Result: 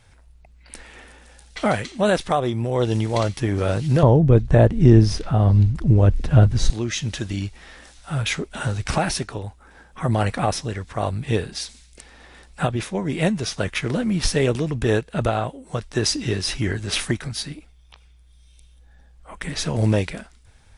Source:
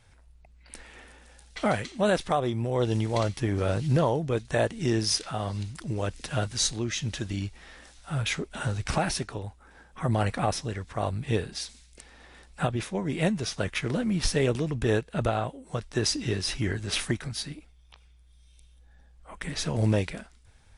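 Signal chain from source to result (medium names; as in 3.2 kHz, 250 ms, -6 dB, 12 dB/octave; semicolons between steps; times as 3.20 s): 4.03–6.70 s: tilt EQ -4 dB/octave; trim +5 dB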